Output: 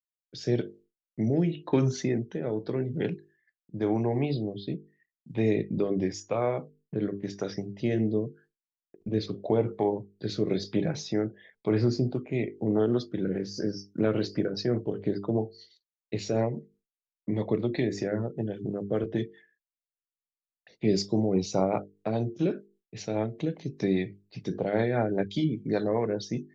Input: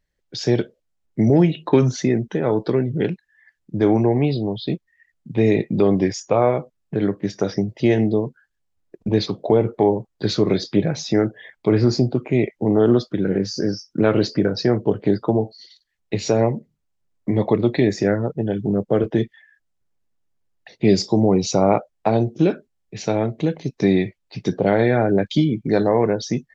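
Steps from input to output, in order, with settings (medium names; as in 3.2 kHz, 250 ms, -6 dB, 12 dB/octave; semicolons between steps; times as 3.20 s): hum notches 50/100/150/200/250/300/350/400/450 Hz; expander -47 dBFS; rotary cabinet horn 0.9 Hz, later 5 Hz, at 11.51 s; trim -7 dB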